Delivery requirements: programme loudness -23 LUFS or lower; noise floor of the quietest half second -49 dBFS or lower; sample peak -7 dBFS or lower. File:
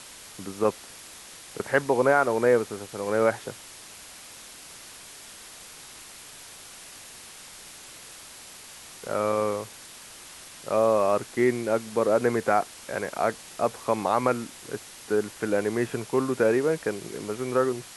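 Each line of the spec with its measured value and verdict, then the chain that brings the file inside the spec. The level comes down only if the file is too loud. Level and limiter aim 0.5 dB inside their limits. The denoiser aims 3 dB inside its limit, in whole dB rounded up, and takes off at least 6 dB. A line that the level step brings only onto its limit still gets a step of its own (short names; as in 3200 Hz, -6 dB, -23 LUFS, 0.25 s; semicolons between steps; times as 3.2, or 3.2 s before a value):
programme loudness -26.0 LUFS: OK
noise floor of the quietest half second -45 dBFS: fail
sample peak -7.5 dBFS: OK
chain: denoiser 7 dB, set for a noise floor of -45 dBFS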